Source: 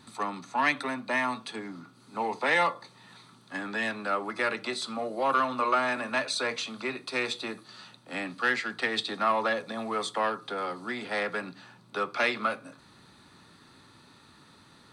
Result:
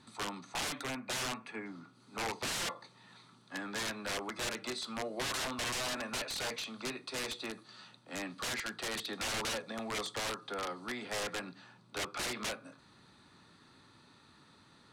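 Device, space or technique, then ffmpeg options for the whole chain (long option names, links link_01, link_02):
overflowing digital effects unit: -filter_complex "[0:a]asettb=1/sr,asplit=3[link_01][link_02][link_03];[link_01]atrim=end=0.964[link_04];[link_02]atrim=start=0.96:end=1.66,asetpts=PTS-STARTPTS,afade=type=in:duration=0.004:curve=qsin,afade=type=out:start_time=0.696:duration=0.004:curve=qsin,highshelf=frequency=2900:width_type=q:width=3:gain=-7[link_05];[link_03]atrim=start=1.656[link_06];[link_04][link_05]acrossfade=duration=0.004:curve1=hsin:curve2=qsin[link_07];[link_07][link_06]acrossfade=duration=0.004:curve1=qsin:curve2=hsin,aeval=exprs='(mod(16.8*val(0)+1,2)-1)/16.8':channel_layout=same,lowpass=9400,volume=-5.5dB"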